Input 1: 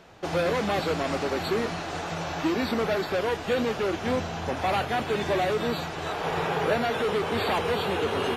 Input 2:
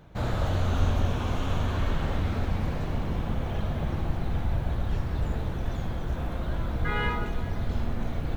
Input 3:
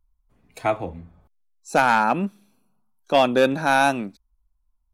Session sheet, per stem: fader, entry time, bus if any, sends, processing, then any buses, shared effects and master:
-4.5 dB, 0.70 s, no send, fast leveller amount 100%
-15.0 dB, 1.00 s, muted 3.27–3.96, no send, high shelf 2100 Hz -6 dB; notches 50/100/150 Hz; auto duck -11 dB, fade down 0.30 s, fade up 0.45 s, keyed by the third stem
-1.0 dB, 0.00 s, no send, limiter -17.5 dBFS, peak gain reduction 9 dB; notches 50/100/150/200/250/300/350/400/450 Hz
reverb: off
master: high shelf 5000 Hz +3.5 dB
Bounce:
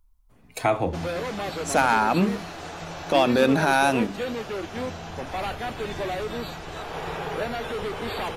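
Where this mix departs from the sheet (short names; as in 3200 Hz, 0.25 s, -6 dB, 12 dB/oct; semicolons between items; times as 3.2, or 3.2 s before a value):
stem 1: missing fast leveller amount 100%; stem 3 -1.0 dB -> +6.0 dB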